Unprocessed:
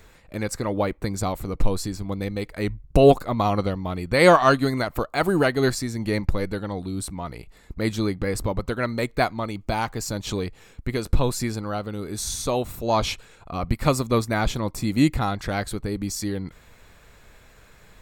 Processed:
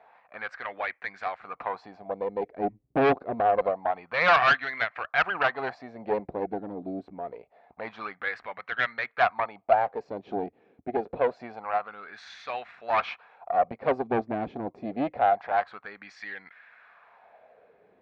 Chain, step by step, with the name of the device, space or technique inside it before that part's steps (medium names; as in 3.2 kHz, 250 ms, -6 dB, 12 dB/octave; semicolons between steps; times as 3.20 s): wah-wah guitar rig (wah-wah 0.26 Hz 320–1800 Hz, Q 3.1; valve stage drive 26 dB, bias 0.75; cabinet simulation 88–4500 Hz, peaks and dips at 98 Hz -8 dB, 150 Hz -4 dB, 330 Hz -8 dB, 720 Hz +10 dB, 1.7 kHz +4 dB, 2.4 kHz +6 dB); trim +8.5 dB